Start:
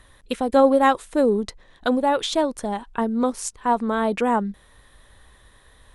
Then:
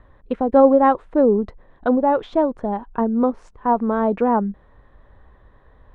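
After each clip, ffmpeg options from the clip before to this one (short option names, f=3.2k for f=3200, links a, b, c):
-af "lowpass=1.1k,volume=3.5dB"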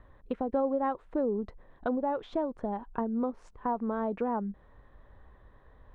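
-af "acompressor=threshold=-25dB:ratio=2.5,volume=-5.5dB"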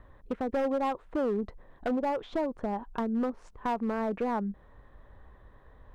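-af "asoftclip=type=hard:threshold=-26.5dB,volume=2dB"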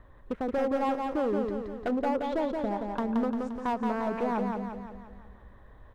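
-af "aecho=1:1:174|348|522|696|870|1044|1218:0.631|0.328|0.171|0.0887|0.0461|0.024|0.0125"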